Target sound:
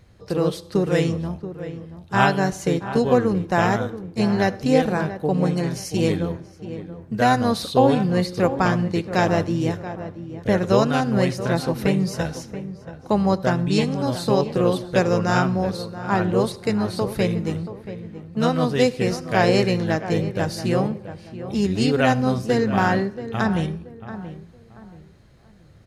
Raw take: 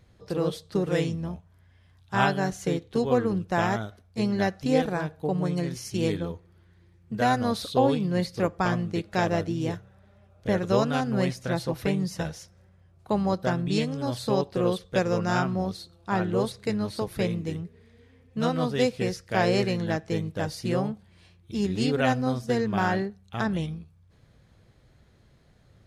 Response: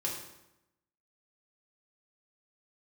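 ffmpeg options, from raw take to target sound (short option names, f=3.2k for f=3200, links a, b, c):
-filter_complex "[0:a]bandreject=f=3.4k:w=16,asplit=2[a][b];[b]adelay=680,lowpass=f=1.6k:p=1,volume=-12dB,asplit=2[c][d];[d]adelay=680,lowpass=f=1.6k:p=1,volume=0.32,asplit=2[e][f];[f]adelay=680,lowpass=f=1.6k:p=1,volume=0.32[g];[a][c][e][g]amix=inputs=4:normalize=0,asplit=2[h][i];[1:a]atrim=start_sample=2205,adelay=72[j];[i][j]afir=irnorm=-1:irlink=0,volume=-24dB[k];[h][k]amix=inputs=2:normalize=0,volume=5.5dB"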